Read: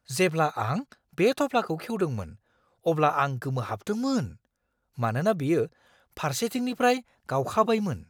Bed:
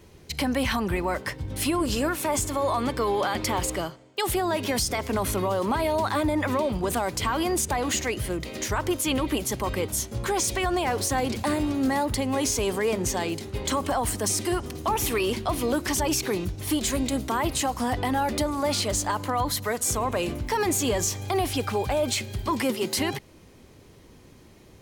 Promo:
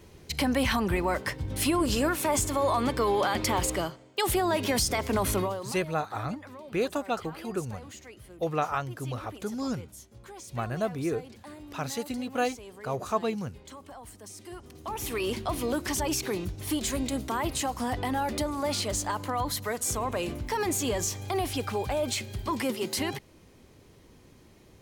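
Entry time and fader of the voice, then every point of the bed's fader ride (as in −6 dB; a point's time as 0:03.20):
5.55 s, −5.5 dB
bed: 0:05.40 −0.5 dB
0:05.78 −20 dB
0:14.33 −20 dB
0:15.28 −4 dB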